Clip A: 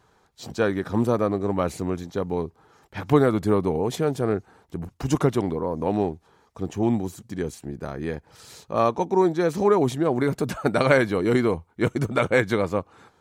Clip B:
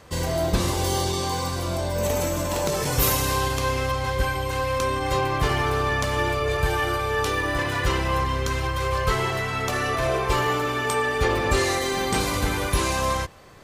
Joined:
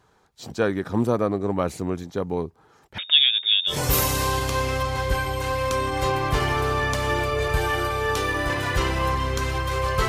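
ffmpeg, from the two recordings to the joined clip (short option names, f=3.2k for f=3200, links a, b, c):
-filter_complex "[0:a]asettb=1/sr,asplit=3[a][b][c];[a]atrim=end=2.984[d];[b]atrim=start=2.98:end=3.78,asetpts=PTS-STARTPTS,afade=t=in:d=0.004:c=qsin,afade=t=out:st=0.796:d=0.004:c=qsin,lowpass=f=3.2k:t=q:w=0.5098,lowpass=f=3.2k:t=q:w=0.6013,lowpass=f=3.2k:t=q:w=0.9,lowpass=f=3.2k:t=q:w=2.563,afreqshift=-3800[e];[c]atrim=start=3.776[f];[d][e]acrossfade=d=0.004:c1=hsin:c2=qsin[g];[g][f]acrossfade=d=0.004:c1=qsin:c2=hsin,apad=whole_dur=10.08,atrim=end=10.08,atrim=end=3.78,asetpts=PTS-STARTPTS[h];[1:a]atrim=start=2.75:end=9.17,asetpts=PTS-STARTPTS[i];[h][i]acrossfade=d=0.12:c1=tri:c2=tri"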